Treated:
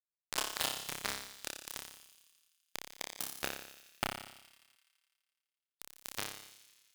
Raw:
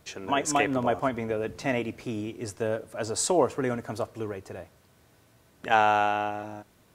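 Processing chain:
pitch glide at a constant tempo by +8 semitones ending unshifted
reversed playback
downward compressor 10 to 1, threshold −35 dBFS, peak gain reduction 18.5 dB
reversed playback
high-pass filter 690 Hz 6 dB per octave
feedback delay network reverb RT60 2.3 s, low-frequency decay 1.45×, high-frequency decay 0.5×, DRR 9.5 dB
bit reduction 5 bits
reverb reduction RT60 1.9 s
flutter between parallel walls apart 5.1 metres, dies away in 0.73 s
upward compression, threshold −59 dBFS
delay with a high-pass on its return 84 ms, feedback 74%, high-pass 2,700 Hz, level −11.5 dB
harmonic generator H 3 −19 dB, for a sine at −20 dBFS
level +8.5 dB

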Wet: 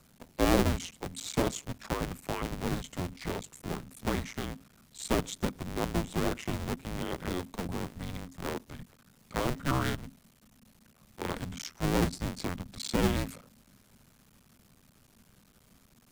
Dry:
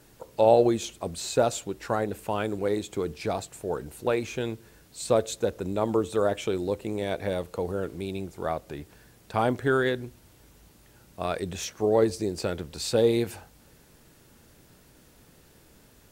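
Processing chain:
sub-harmonics by changed cycles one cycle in 2, muted
frequency shifter −270 Hz
level −2.5 dB

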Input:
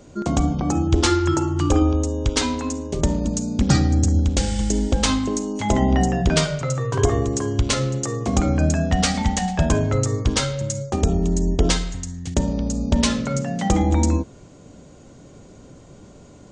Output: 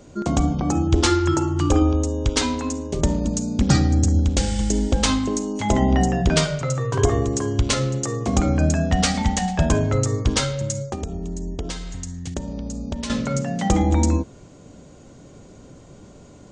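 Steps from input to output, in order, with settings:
0:10.90–0:13.10: downward compressor 6 to 1, threshold −26 dBFS, peak gain reduction 13.5 dB

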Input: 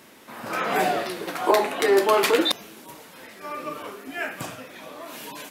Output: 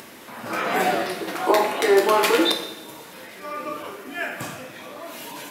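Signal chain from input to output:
coupled-rooms reverb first 0.82 s, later 2.3 s, DRR 3 dB
upward compression, threshold −36 dBFS

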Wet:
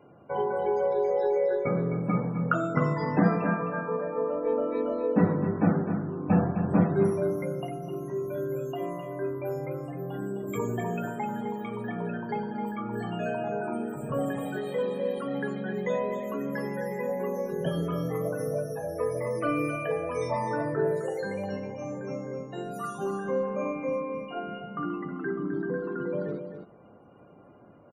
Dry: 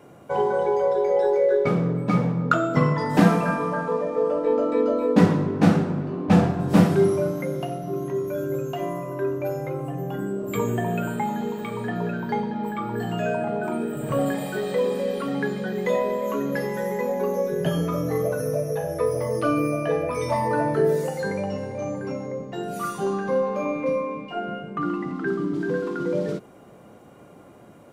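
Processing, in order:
0:19.06–0:19.87: parametric band 2,100 Hz +7.5 dB 0.68 octaves
spectral peaks only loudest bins 64
single-tap delay 259 ms −8.5 dB
level −6 dB

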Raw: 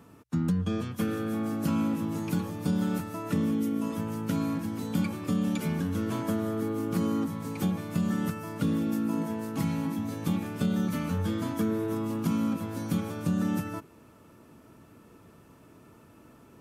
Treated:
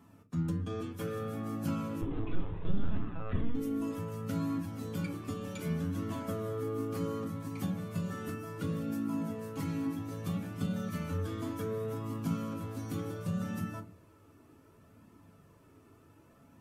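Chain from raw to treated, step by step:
0:02.01–0:03.55: linear-prediction vocoder at 8 kHz pitch kept
on a send at −3.5 dB: convolution reverb, pre-delay 3 ms
on the sum: flanger 0.66 Hz, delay 0.9 ms, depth 1.9 ms, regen −46%
level −4 dB

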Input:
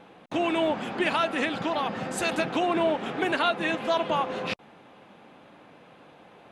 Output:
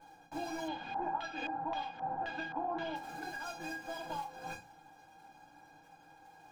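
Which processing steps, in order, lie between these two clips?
running median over 15 samples
mains-hum notches 60/120/180/240 Hz
tuned comb filter 810 Hz, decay 0.16 s, harmonics all, mix 100%
downward compressor 8 to 1, threshold −51 dBFS, peak gain reduction 15 dB
notch filter 1,900 Hz, Q 6.1
hollow resonant body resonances 1,400/3,800 Hz, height 11 dB, ringing for 45 ms
floating-point word with a short mantissa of 2 bits
convolution reverb RT60 0.30 s, pre-delay 3 ms, DRR −2.5 dB
0:00.68–0:02.96: auto-filter low-pass square 1.9 Hz 930–3,100 Hz
high-shelf EQ 9,500 Hz −9 dB
level +11 dB

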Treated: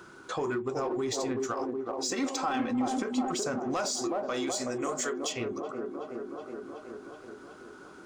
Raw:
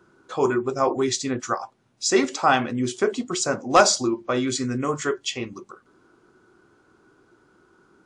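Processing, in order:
0:03.91–0:05.33: bass and treble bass −13 dB, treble +10 dB
on a send: delay with a band-pass on its return 372 ms, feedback 59%, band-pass 440 Hz, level −4.5 dB
on the sum: brickwall limiter −15.5 dBFS, peak gain reduction 13 dB
in parallel at −7.5 dB: gain into a clipping stage and back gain 27 dB
on the sum: downward compressor 2 to 1, threshold −38 dBFS, peak gain reduction 11 dB
0:02.12–0:03.32: comb filter 3.8 ms, depth 60%
one half of a high-frequency compander encoder only
level +1 dB

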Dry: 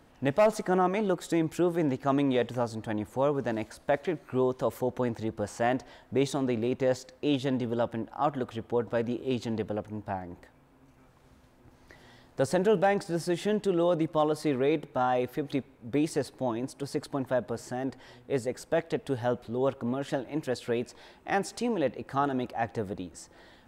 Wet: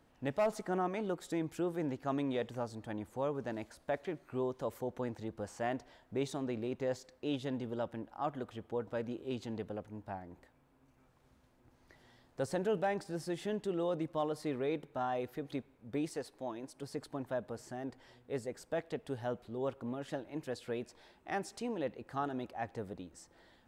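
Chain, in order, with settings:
0:16.09–0:16.75: parametric band 100 Hz −8.5 dB 2.4 octaves
level −9 dB

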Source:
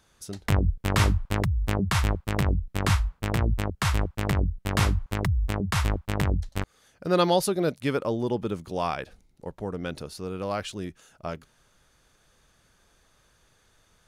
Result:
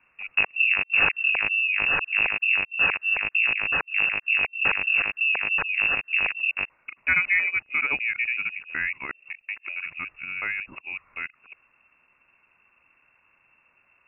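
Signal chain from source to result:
reversed piece by piece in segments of 186 ms
voice inversion scrambler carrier 2,700 Hz

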